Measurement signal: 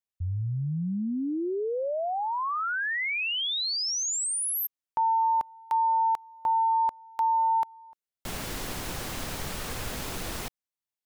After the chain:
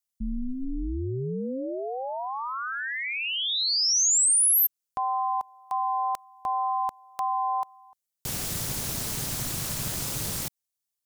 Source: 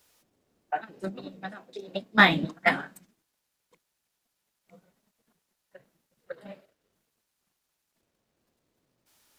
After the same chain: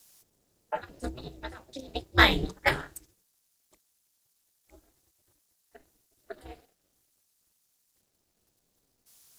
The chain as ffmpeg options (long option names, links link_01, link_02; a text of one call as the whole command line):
ffmpeg -i in.wav -af "aeval=exprs='val(0)*sin(2*PI*130*n/s)':channel_layout=same,bass=frequency=250:gain=4,treble=frequency=4000:gain=12" out.wav